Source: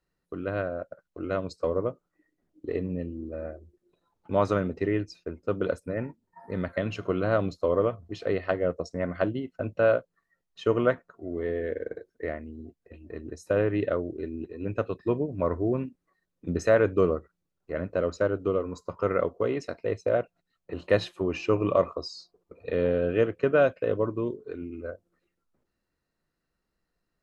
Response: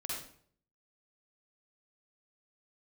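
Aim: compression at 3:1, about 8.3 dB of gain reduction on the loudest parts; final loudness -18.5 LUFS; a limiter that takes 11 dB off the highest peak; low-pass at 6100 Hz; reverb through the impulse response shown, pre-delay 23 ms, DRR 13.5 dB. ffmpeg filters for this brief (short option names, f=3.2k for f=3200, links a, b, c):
-filter_complex "[0:a]lowpass=6.1k,acompressor=threshold=-28dB:ratio=3,alimiter=level_in=1.5dB:limit=-24dB:level=0:latency=1,volume=-1.5dB,asplit=2[a][b];[1:a]atrim=start_sample=2205,adelay=23[c];[b][c]afir=irnorm=-1:irlink=0,volume=-15dB[d];[a][d]amix=inputs=2:normalize=0,volume=18.5dB"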